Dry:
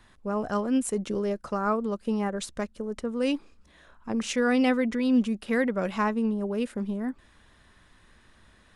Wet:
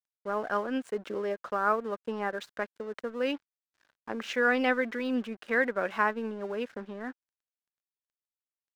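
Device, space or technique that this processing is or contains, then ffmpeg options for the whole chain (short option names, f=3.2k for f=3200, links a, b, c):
pocket radio on a weak battery: -af "highpass=380,lowpass=3.4k,aeval=exprs='sgn(val(0))*max(abs(val(0))-0.00251,0)':c=same,equalizer=f=1.6k:t=o:w=0.43:g=7"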